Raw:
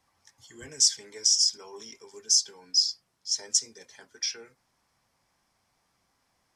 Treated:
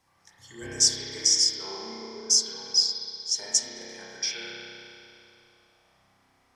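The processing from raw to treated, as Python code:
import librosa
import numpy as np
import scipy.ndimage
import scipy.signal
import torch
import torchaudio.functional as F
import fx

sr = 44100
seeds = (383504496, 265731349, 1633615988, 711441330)

y = fx.cheby2_lowpass(x, sr, hz=5200.0, order=4, stop_db=50, at=(1.66, 2.3))
y = fx.rev_spring(y, sr, rt60_s=2.8, pass_ms=(31,), chirp_ms=35, drr_db=-6.0)
y = F.gain(torch.from_numpy(y), 1.0).numpy()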